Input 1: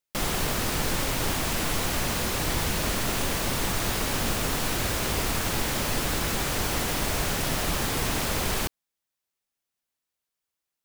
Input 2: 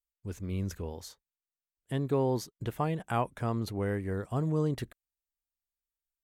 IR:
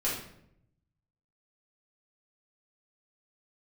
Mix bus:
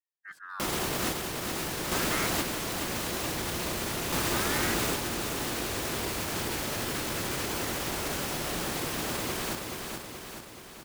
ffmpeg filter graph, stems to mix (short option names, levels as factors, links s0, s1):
-filter_complex "[0:a]alimiter=limit=0.0841:level=0:latency=1,adelay=450,volume=1.12,asplit=2[s0][s1];[s1]volume=0.668[s2];[1:a]aeval=exprs='val(0)*sin(2*PI*1200*n/s+1200*0.55/0.41*sin(2*PI*0.41*n/s))':c=same,volume=0.562,asplit=3[s3][s4][s5];[s3]atrim=end=2.27,asetpts=PTS-STARTPTS,afade=t=out:st=2.266:d=0.004:c=hsin[s6];[s4]atrim=start=2.27:end=4.12,asetpts=PTS-STARTPTS,volume=0[s7];[s5]atrim=start=4.12,asetpts=PTS-STARTPTS,afade=t=in:d=0.004:c=hsin[s8];[s6][s7][s8]concat=n=3:v=0:a=1,asplit=2[s9][s10];[s10]apad=whole_len=498324[s11];[s0][s11]sidechaingate=range=0.0224:threshold=0.00178:ratio=16:detection=peak[s12];[s2]aecho=0:1:427|854|1281|1708|2135|2562|2989|3416|3843:1|0.58|0.336|0.195|0.113|0.0656|0.0381|0.0221|0.0128[s13];[s12][s9][s13]amix=inputs=3:normalize=0,highpass=f=100:p=1,equalizer=f=350:t=o:w=0.45:g=5"